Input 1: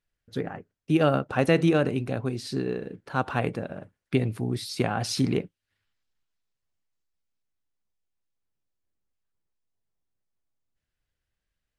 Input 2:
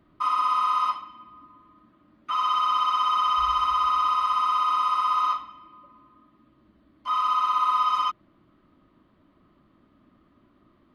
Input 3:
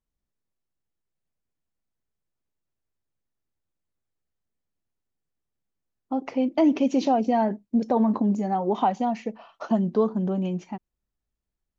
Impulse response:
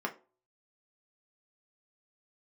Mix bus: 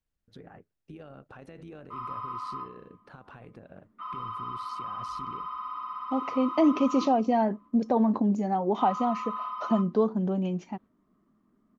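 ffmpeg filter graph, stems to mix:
-filter_complex "[0:a]alimiter=limit=-19.5dB:level=0:latency=1:release=57,volume=-7dB[link_01];[1:a]lowshelf=frequency=400:gain=7.5,adelay=1700,volume=-11dB,asplit=2[link_02][link_03];[link_03]volume=-7dB[link_04];[2:a]highshelf=frequency=4800:gain=8,volume=-2dB,asplit=2[link_05][link_06];[link_06]apad=whole_len=557675[link_07];[link_02][link_07]sidechaingate=range=-33dB:threshold=-47dB:ratio=16:detection=peak[link_08];[link_01][link_08]amix=inputs=2:normalize=0,tremolo=f=96:d=0.519,alimiter=level_in=12dB:limit=-24dB:level=0:latency=1:release=238,volume=-12dB,volume=0dB[link_09];[3:a]atrim=start_sample=2205[link_10];[link_04][link_10]afir=irnorm=-1:irlink=0[link_11];[link_05][link_09][link_11]amix=inputs=3:normalize=0,lowpass=frequency=3400:poles=1"

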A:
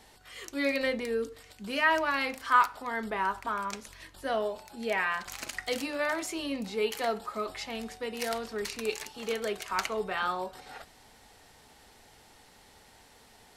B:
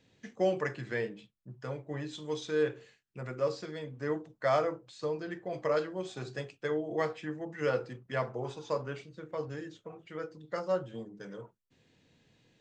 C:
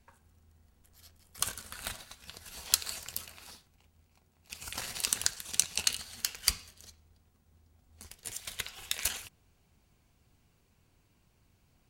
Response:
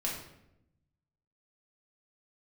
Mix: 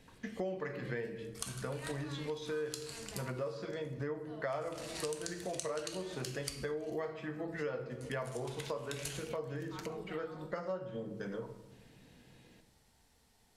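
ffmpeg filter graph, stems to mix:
-filter_complex "[0:a]bass=frequency=250:gain=9,treble=frequency=4000:gain=5,volume=-18dB,asplit=2[link_01][link_02];[link_02]volume=-10.5dB[link_03];[1:a]lowpass=frequency=3600:poles=1,volume=2.5dB,asplit=3[link_04][link_05][link_06];[link_05]volume=-7dB[link_07];[2:a]lowpass=frequency=11000:width=0.5412,lowpass=frequency=11000:width=1.3066,volume=-8dB,asplit=2[link_08][link_09];[link_09]volume=-3dB[link_10];[link_06]apad=whole_len=598338[link_11];[link_01][link_11]sidechaincompress=threshold=-35dB:ratio=8:attack=16:release=749[link_12];[3:a]atrim=start_sample=2205[link_13];[link_03][link_07][link_10]amix=inputs=3:normalize=0[link_14];[link_14][link_13]afir=irnorm=-1:irlink=0[link_15];[link_12][link_04][link_08][link_15]amix=inputs=4:normalize=0,acompressor=threshold=-37dB:ratio=5"

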